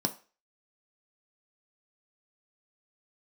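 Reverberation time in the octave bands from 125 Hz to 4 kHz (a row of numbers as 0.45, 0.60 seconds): 0.25, 0.25, 0.35, 0.35, 0.35, 0.35 seconds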